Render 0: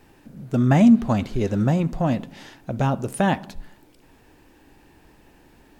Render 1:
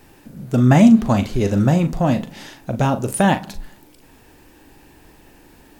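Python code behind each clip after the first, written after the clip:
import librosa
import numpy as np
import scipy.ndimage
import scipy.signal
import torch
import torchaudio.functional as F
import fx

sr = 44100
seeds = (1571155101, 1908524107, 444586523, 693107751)

y = fx.high_shelf(x, sr, hz=6000.0, db=7.0)
y = fx.doubler(y, sr, ms=40.0, db=-10)
y = F.gain(torch.from_numpy(y), 4.0).numpy()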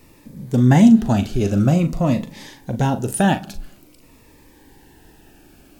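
y = fx.notch_cascade(x, sr, direction='falling', hz=0.49)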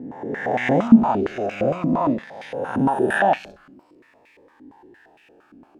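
y = fx.spec_swells(x, sr, rise_s=1.45)
y = fx.filter_held_bandpass(y, sr, hz=8.7, low_hz=270.0, high_hz=2300.0)
y = F.gain(torch.from_numpy(y), 6.5).numpy()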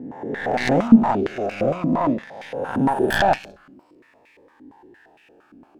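y = fx.tracing_dist(x, sr, depth_ms=0.17)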